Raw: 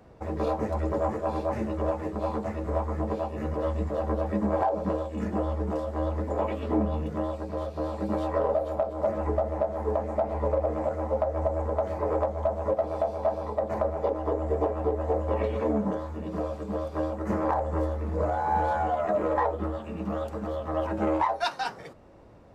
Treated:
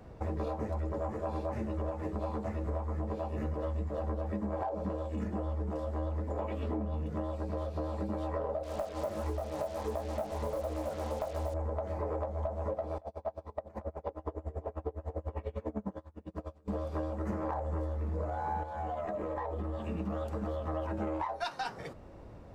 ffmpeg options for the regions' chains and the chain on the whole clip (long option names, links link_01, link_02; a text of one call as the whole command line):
ffmpeg -i in.wav -filter_complex "[0:a]asettb=1/sr,asplit=3[link_01][link_02][link_03];[link_01]atrim=end=8.634[link_04];[link_02]atrim=start=8.63:end=11.54,asetpts=PTS-STARTPTS,afade=type=in:duration=0.004:curve=qsin,afade=type=out:start_time=2.906:duration=0.004:curve=qsin,equalizer=frequency=2300:width_type=o:width=2.1:gain=3.5,flanger=delay=16:depth=5.6:speed=1.4,acrusher=bits=6:mix=0:aa=0.5[link_05];[link_03]atrim=start=11.536[link_06];[link_04][link_05]acrossfade=duration=0.004:curve1=hsin:curve2=qsin[link_07];[link_07][link_06]acrossfade=duration=0.004:curve1=qsin:curve2=hsin,asettb=1/sr,asplit=3[link_08][link_09][link_10];[link_08]atrim=end=12.984[link_11];[link_09]atrim=start=12.98:end=16.68,asetpts=PTS-STARTPTS,afade=type=in:duration=0.004:curve=qsin,afade=type=out:start_time=3.696:duration=0.004:curve=qsin,agate=range=-33dB:threshold=-27dB:ratio=3:release=100:detection=peak,acompressor=threshold=-34dB:ratio=1.5:attack=3.2:release=140:knee=1:detection=peak,aeval=exprs='val(0)*pow(10,-28*(0.5-0.5*cos(2*PI*10*n/s))/20)':channel_layout=same[link_12];[link_10]atrim=start=16.676[link_13];[link_11][link_12]acrossfade=duration=0.004:curve1=hsin:curve2=qsin[link_14];[link_14][link_13]acrossfade=duration=0.004:curve1=qsin:curve2=hsin,asettb=1/sr,asplit=3[link_15][link_16][link_17];[link_15]atrim=end=18.634[link_18];[link_16]atrim=start=18.63:end=19.89,asetpts=PTS-STARTPTS,afade=type=in:duration=0.004:curve=qsin,afade=type=out:start_time=1.256:duration=0.004:curve=qsin,bandreject=frequency=1400:width=10,acompressor=threshold=-32dB:ratio=5:attack=3.2:release=140:knee=1:detection=peak[link_19];[link_17]atrim=start=19.886[link_20];[link_18][link_19]acrossfade=duration=0.004:curve1=hsin:curve2=qsin[link_21];[link_21][link_20]acrossfade=duration=0.004:curve1=qsin:curve2=hsin,lowshelf=frequency=120:gain=7.5,acompressor=threshold=-32dB:ratio=6" out.wav